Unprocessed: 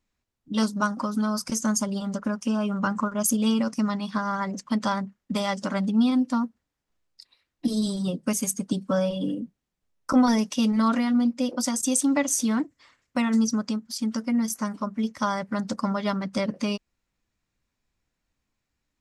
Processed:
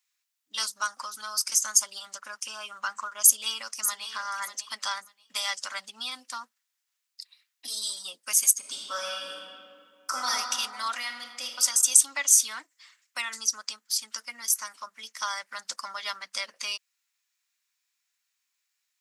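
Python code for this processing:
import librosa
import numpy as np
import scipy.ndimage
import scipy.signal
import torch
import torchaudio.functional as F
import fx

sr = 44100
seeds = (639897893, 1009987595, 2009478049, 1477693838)

y = fx.echo_throw(x, sr, start_s=3.22, length_s=0.86, ms=590, feedback_pct=20, wet_db=-10.5)
y = fx.reverb_throw(y, sr, start_s=8.58, length_s=1.72, rt60_s=2.2, drr_db=-2.5)
y = fx.reverb_throw(y, sr, start_s=10.95, length_s=0.64, rt60_s=1.4, drr_db=4.0)
y = scipy.signal.sosfilt(scipy.signal.butter(2, 1300.0, 'highpass', fs=sr, output='sos'), y)
y = fx.tilt_eq(y, sr, slope=3.0)
y = y * 10.0 ** (-1.0 / 20.0)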